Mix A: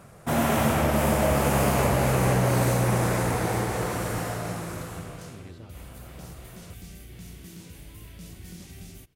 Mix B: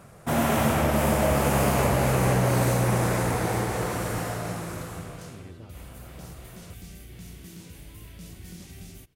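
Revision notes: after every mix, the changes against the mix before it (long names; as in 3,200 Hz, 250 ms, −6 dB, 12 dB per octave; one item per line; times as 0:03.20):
speech: add moving average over 7 samples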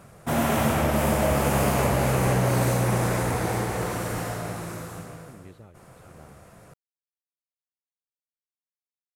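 second sound: muted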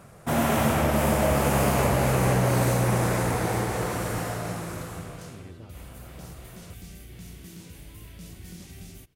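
second sound: unmuted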